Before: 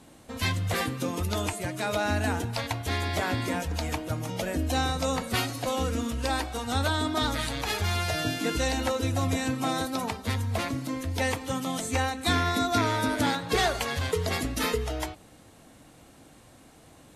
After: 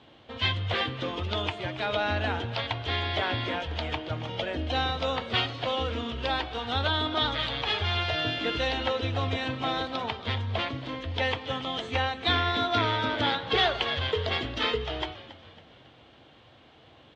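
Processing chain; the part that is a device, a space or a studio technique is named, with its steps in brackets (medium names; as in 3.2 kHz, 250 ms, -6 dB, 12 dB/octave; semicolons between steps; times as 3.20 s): frequency-shifting delay pedal into a guitar cabinet (frequency-shifting echo 276 ms, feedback 48%, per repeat -78 Hz, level -15.5 dB; cabinet simulation 76–4000 Hz, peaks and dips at 180 Hz -10 dB, 270 Hz -6 dB, 3.2 kHz +10 dB)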